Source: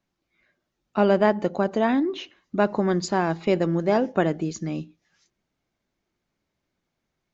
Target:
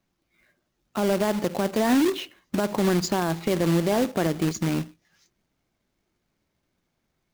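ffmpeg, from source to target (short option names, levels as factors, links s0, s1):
-af "lowshelf=f=270:g=3,alimiter=limit=0.15:level=0:latency=1:release=77,acrusher=bits=2:mode=log:mix=0:aa=0.000001,volume=1.26"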